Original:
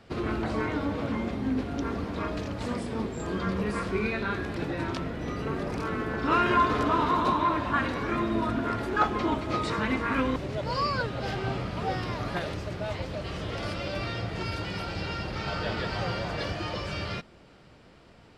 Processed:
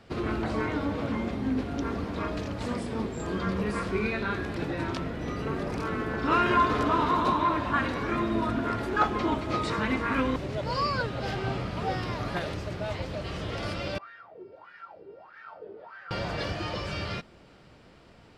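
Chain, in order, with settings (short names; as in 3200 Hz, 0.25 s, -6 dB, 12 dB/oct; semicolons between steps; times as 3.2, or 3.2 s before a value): 13.98–16.11 wah 1.6 Hz 380–1700 Hz, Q 9.8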